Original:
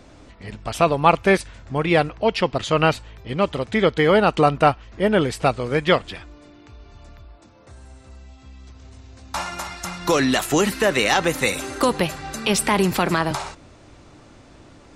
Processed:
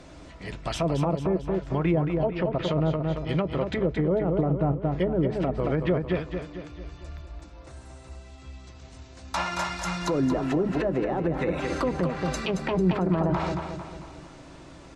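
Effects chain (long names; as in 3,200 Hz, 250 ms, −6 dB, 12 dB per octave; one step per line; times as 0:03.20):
low-shelf EQ 160 Hz −3 dB
treble cut that deepens with the level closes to 450 Hz, closed at −15 dBFS
repeating echo 224 ms, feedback 48%, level −8 dB
brickwall limiter −17.5 dBFS, peak gain reduction 10.5 dB
on a send at −11 dB: convolution reverb RT60 0.10 s, pre-delay 3 ms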